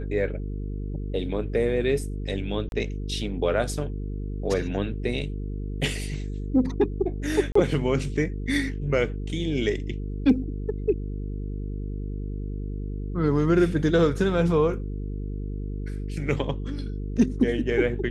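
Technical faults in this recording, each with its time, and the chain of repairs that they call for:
mains buzz 50 Hz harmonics 9 −31 dBFS
0:02.69–0:02.72: drop-out 31 ms
0:07.52–0:07.55: drop-out 34 ms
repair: hum removal 50 Hz, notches 9
repair the gap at 0:02.69, 31 ms
repair the gap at 0:07.52, 34 ms

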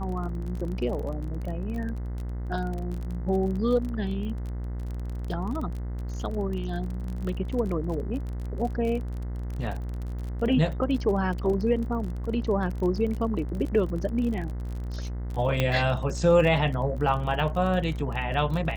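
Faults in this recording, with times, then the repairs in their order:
mains buzz 60 Hz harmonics 35 −32 dBFS
surface crackle 31 per second −32 dBFS
0:15.60: click −11 dBFS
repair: click removal
hum removal 60 Hz, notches 35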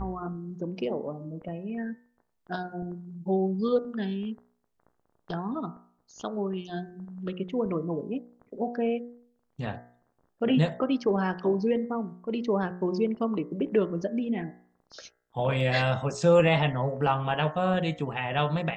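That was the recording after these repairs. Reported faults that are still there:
0:15.60: click

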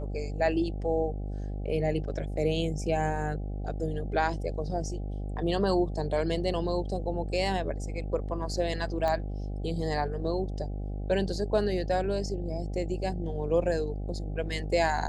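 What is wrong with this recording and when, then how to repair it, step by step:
mains buzz 50 Hz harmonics 16 −34 dBFS
0:09.08: click −19 dBFS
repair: click removal
hum removal 50 Hz, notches 16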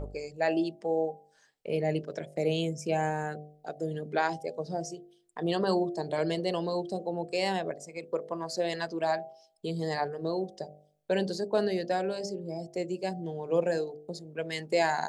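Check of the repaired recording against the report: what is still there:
none of them is left

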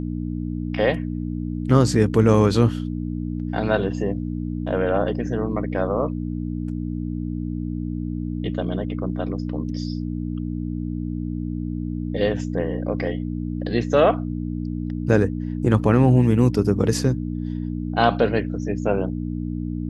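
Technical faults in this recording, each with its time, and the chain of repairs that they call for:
mains hum 60 Hz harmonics 5 −27 dBFS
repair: hum removal 60 Hz, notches 5

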